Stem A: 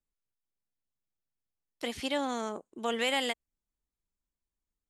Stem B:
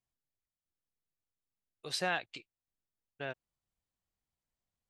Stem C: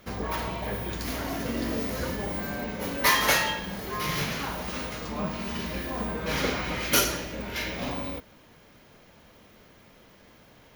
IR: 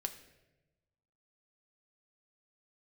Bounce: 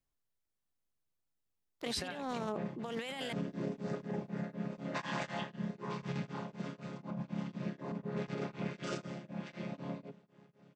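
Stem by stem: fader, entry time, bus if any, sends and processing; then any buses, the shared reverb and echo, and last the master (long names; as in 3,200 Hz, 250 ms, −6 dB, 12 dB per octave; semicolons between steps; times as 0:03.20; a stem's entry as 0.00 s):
−1.0 dB, 0.00 s, no send, adaptive Wiener filter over 15 samples
−2.0 dB, 0.00 s, no send, no processing
−7.0 dB, 1.90 s, no send, channel vocoder with a chord as carrier major triad, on C#3; tremolo along a rectified sine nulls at 4 Hz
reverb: not used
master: compressor whose output falls as the input rises −37 dBFS, ratio −1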